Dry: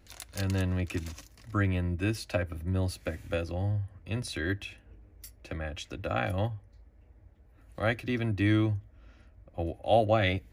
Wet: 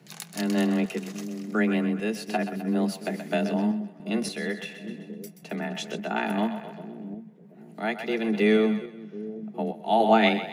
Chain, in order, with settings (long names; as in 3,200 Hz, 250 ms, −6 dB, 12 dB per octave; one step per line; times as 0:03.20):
frequency shifter +110 Hz
echo with a time of its own for lows and highs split 490 Hz, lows 730 ms, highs 128 ms, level −10.5 dB
sample-and-hold tremolo
level +6 dB